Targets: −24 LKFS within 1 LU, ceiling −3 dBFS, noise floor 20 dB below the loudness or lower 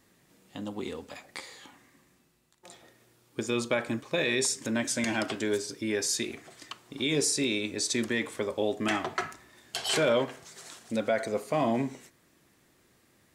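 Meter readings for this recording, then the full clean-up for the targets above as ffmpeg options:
integrated loudness −29.5 LKFS; sample peak −14.5 dBFS; target loudness −24.0 LKFS
→ -af "volume=5.5dB"

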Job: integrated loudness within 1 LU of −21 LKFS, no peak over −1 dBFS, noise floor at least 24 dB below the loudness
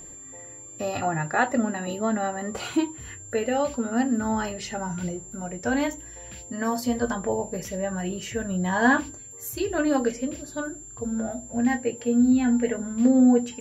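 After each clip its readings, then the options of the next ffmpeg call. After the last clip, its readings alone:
interfering tone 7,300 Hz; level of the tone −41 dBFS; integrated loudness −25.5 LKFS; sample peak −7.5 dBFS; target loudness −21.0 LKFS
→ -af "bandreject=frequency=7300:width=30"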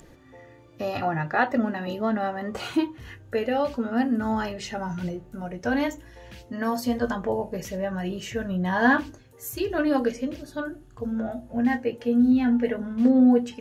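interfering tone none found; integrated loudness −25.5 LKFS; sample peak −7.5 dBFS; target loudness −21.0 LKFS
→ -af "volume=4.5dB"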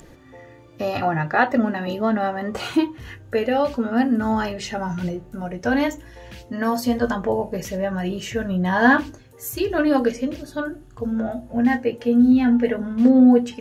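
integrated loudness −21.0 LKFS; sample peak −3.0 dBFS; background noise floor −47 dBFS

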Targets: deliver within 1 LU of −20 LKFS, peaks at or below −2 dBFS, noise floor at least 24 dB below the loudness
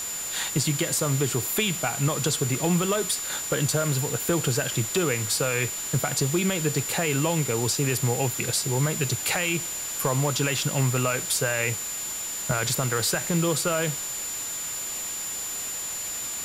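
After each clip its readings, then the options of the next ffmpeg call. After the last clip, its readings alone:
interfering tone 7,100 Hz; level of the tone −31 dBFS; background noise floor −32 dBFS; target noise floor −49 dBFS; integrated loudness −25.0 LKFS; sample peak −12.5 dBFS; target loudness −20.0 LKFS
→ -af "bandreject=frequency=7100:width=30"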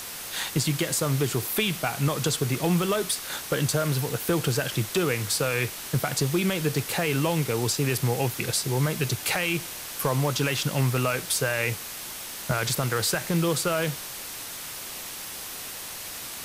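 interfering tone none found; background noise floor −37 dBFS; target noise floor −51 dBFS
→ -af "afftdn=noise_reduction=14:noise_floor=-37"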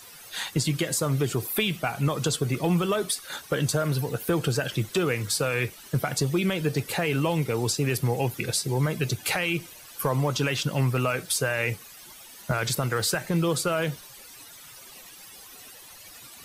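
background noise floor −47 dBFS; target noise floor −51 dBFS
→ -af "afftdn=noise_reduction=6:noise_floor=-47"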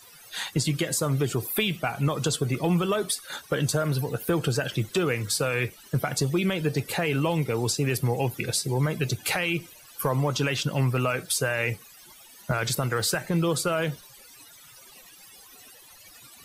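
background noise floor −51 dBFS; integrated loudness −26.5 LKFS; sample peak −13.5 dBFS; target loudness −20.0 LKFS
→ -af "volume=6.5dB"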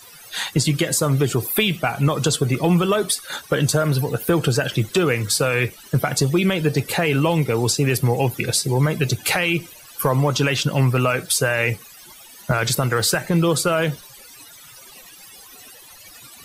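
integrated loudness −20.0 LKFS; sample peak −7.0 dBFS; background noise floor −44 dBFS

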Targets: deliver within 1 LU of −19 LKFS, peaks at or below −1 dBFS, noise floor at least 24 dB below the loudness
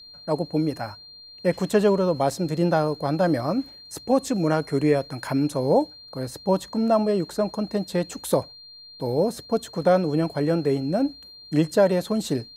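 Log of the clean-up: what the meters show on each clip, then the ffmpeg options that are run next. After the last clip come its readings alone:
interfering tone 4,200 Hz; level of the tone −43 dBFS; integrated loudness −24.0 LKFS; sample peak −7.0 dBFS; target loudness −19.0 LKFS
→ -af "bandreject=frequency=4200:width=30"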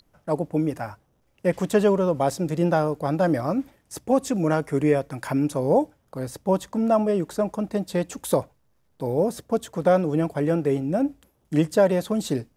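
interfering tone none found; integrated loudness −24.0 LKFS; sample peak −7.0 dBFS; target loudness −19.0 LKFS
→ -af "volume=5dB"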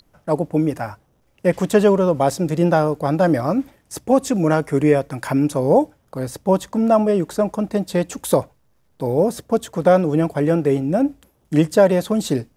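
integrated loudness −19.0 LKFS; sample peak −2.0 dBFS; background noise floor −62 dBFS

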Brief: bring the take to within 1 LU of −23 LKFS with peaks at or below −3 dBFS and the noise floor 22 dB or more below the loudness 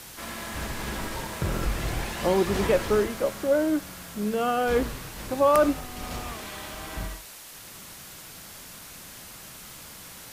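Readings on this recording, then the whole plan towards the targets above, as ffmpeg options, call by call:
background noise floor −44 dBFS; target noise floor −49 dBFS; integrated loudness −27.0 LKFS; sample peak −10.0 dBFS; target loudness −23.0 LKFS
→ -af "afftdn=noise_reduction=6:noise_floor=-44"
-af "volume=4dB"

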